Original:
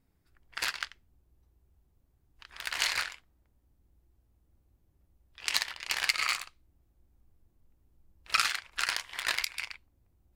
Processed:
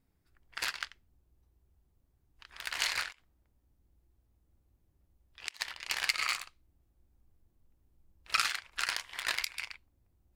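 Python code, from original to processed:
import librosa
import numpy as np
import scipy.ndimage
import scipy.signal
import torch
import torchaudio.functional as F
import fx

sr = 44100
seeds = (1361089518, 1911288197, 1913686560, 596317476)

y = fx.gate_flip(x, sr, shuts_db=-25.0, range_db=-24, at=(3.11, 5.59), fade=0.02)
y = y * 10.0 ** (-2.5 / 20.0)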